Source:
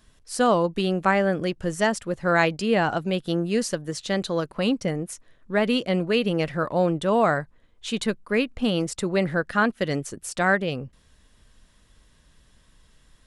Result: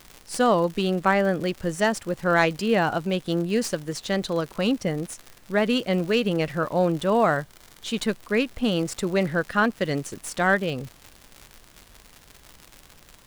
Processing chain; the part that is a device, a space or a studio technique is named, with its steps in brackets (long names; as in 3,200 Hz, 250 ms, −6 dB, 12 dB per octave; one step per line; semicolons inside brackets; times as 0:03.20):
record under a worn stylus (stylus tracing distortion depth 0.028 ms; surface crackle 120 per second −31 dBFS; pink noise bed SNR 31 dB)
0:07.38–0:07.92: notch filter 2,600 Hz, Q 11